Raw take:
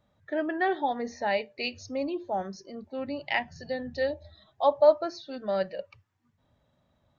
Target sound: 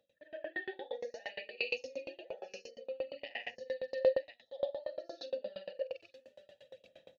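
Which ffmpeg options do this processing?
-filter_complex "[0:a]afftfilt=real='re':imag='-im':win_size=8192:overlap=0.75,areverse,acompressor=mode=upward:threshold=-35dB:ratio=2.5,areverse,alimiter=limit=-24dB:level=0:latency=1:release=350,aexciter=amount=6.9:drive=1.9:freq=2.7k,aphaser=in_gain=1:out_gain=1:delay=2.4:decay=0.55:speed=0.56:type=sinusoidal,aeval=exprs='val(0)+0.000631*(sin(2*PI*60*n/s)+sin(2*PI*2*60*n/s)/2+sin(2*PI*3*60*n/s)/3+sin(2*PI*4*60*n/s)/4+sin(2*PI*5*60*n/s)/5)':c=same,asplit=3[a][b][c];[a]bandpass=f=530:t=q:w=8,volume=0dB[d];[b]bandpass=f=1.84k:t=q:w=8,volume=-6dB[e];[c]bandpass=f=2.48k:t=q:w=8,volume=-9dB[f];[d][e][f]amix=inputs=3:normalize=0,asplit=2[g][h];[h]aecho=0:1:40|46|50|900:0.398|0.668|0.141|0.178[i];[g][i]amix=inputs=2:normalize=0,aeval=exprs='val(0)*pow(10,-28*if(lt(mod(8.6*n/s,1),2*abs(8.6)/1000),1-mod(8.6*n/s,1)/(2*abs(8.6)/1000),(mod(8.6*n/s,1)-2*abs(8.6)/1000)/(1-2*abs(8.6)/1000))/20)':c=same,volume=6.5dB"

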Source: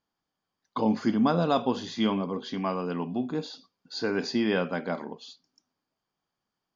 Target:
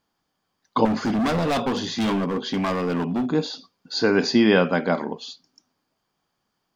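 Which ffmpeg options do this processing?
-filter_complex "[0:a]asettb=1/sr,asplit=3[a][b][c];[a]atrim=end=0.854[d];[b]atrim=start=0.85:end=3.29,asetpts=PTS-STARTPTS,afade=t=in:d=0.004:c=qsin,afade=t=out:st=2.436:d=0.004:c=qsin,volume=29dB,asoftclip=hard,volume=-29dB[e];[c]atrim=start=3.286[f];[d][e]acrossfade=d=0.004:c1=hsin:c2=qsin[g];[g][f]acrossfade=d=0.004:c1=qsin:c2=hsin,volume=9dB"

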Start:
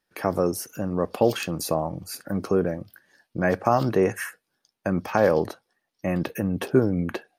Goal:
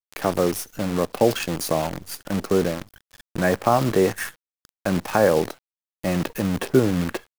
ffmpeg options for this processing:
-af "acrusher=bits=6:dc=4:mix=0:aa=0.000001,acompressor=mode=upward:threshold=-33dB:ratio=2.5,volume=2dB"

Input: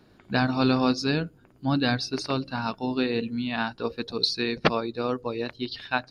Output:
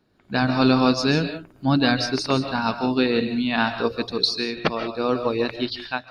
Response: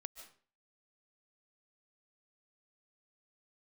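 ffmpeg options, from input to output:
-filter_complex "[0:a]bandreject=f=60:t=h:w=6,bandreject=f=120:t=h:w=6[a];[1:a]atrim=start_sample=2205,afade=t=out:st=0.25:d=0.01,atrim=end_sample=11466[b];[a][b]afir=irnorm=-1:irlink=0,dynaudnorm=f=130:g=5:m=16.5dB,volume=-4dB"

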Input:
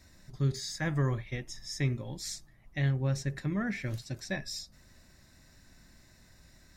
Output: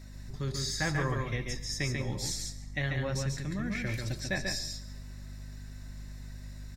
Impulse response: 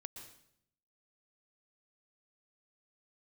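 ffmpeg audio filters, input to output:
-filter_complex "[0:a]acrossover=split=490|1500[a][b][c];[a]alimiter=level_in=7dB:limit=-24dB:level=0:latency=1,volume=-7dB[d];[d][b][c]amix=inputs=3:normalize=0,asettb=1/sr,asplit=3[e][f][g];[e]atrim=end=3.154[h];[f]atrim=start=3.15:end=3.75,asetpts=PTS-STARTPTS,afade=t=in:d=0.004:c=qsin,afade=t=out:st=0.596:d=0.004:c=qsin,acrossover=split=270|3000[i][j][k];[j]acompressor=threshold=-54dB:ratio=2[l];[i][l][k]amix=inputs=3:normalize=0[m];[g]atrim=start=3.746[n];[h][m]acrossfade=d=0.004:c1=hsin:c2=qsin[o];[o][n]acrossfade=d=0.004:c1=qsin:c2=hsin,flanger=delay=1.4:depth=1.2:regen=79:speed=1.7:shape=triangular,aeval=exprs='val(0)+0.002*(sin(2*PI*50*n/s)+sin(2*PI*2*50*n/s)/2+sin(2*PI*3*50*n/s)/3+sin(2*PI*4*50*n/s)/4+sin(2*PI*5*50*n/s)/5)':c=same,aecho=1:1:141:0.631,asplit=2[p][q];[1:a]atrim=start_sample=2205[r];[q][r]afir=irnorm=-1:irlink=0,volume=-1dB[s];[p][s]amix=inputs=2:normalize=0,volume=4.5dB"

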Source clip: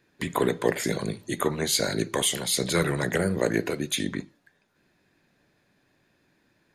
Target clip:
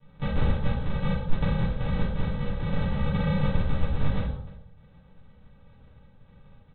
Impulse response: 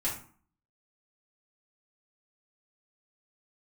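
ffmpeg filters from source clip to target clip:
-filter_complex "[0:a]acompressor=threshold=-36dB:ratio=6,aresample=8000,acrusher=samples=23:mix=1:aa=0.000001,aresample=44100[a];[1:a]atrim=start_sample=2205,asetrate=26019,aresample=44100[b];[a][b]afir=irnorm=-1:irlink=0,volume=2.5dB"

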